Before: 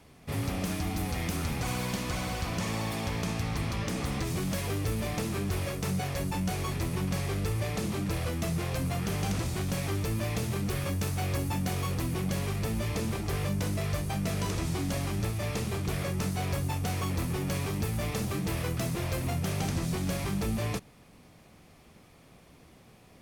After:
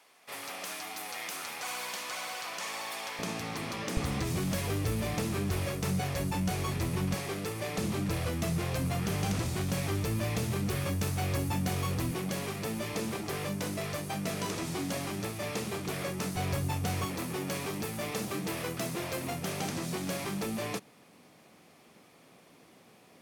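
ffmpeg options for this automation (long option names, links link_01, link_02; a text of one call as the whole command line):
ffmpeg -i in.wav -af "asetnsamples=nb_out_samples=441:pad=0,asendcmd='3.19 highpass f 230;3.97 highpass f 55;7.14 highpass f 200;7.78 highpass f 69;12.11 highpass f 190;16.36 highpass f 76;17.05 highpass f 210',highpass=750" out.wav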